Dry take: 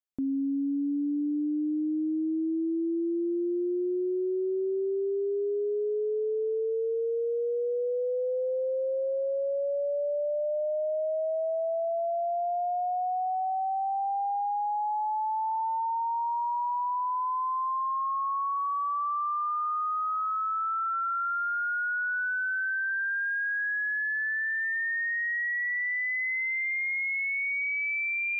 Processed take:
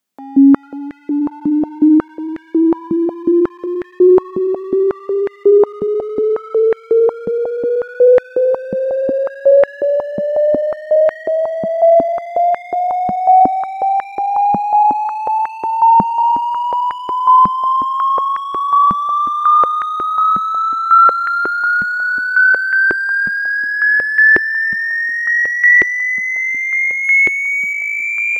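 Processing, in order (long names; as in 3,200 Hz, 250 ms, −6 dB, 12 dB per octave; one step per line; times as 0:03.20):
0:27.04–0:27.73: high-shelf EQ 2,000 Hz +10.5 dB
echo with a time of its own for lows and highs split 870 Hz, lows 447 ms, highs 306 ms, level −10.5 dB
in parallel at −6.5 dB: hard clipping −30 dBFS, distortion −11 dB
on the sum: boost into a limiter +27.5 dB
high-pass on a step sequencer 5.5 Hz 200–1,800 Hz
level −14 dB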